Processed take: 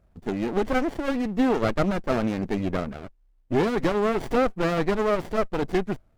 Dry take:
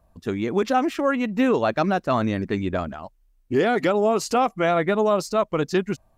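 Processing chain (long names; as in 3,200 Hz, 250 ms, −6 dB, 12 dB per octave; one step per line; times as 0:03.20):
windowed peak hold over 33 samples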